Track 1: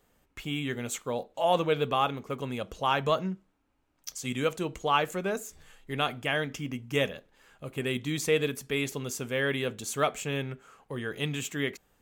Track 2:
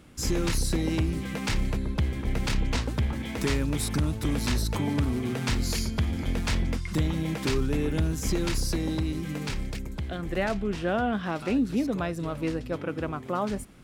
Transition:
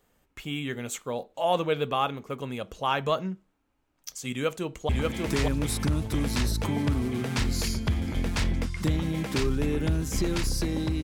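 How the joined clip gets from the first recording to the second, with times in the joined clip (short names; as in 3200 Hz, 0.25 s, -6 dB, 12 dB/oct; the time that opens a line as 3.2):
track 1
4.3–4.89 echo throw 0.59 s, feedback 10%, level -2 dB
4.89 switch to track 2 from 3 s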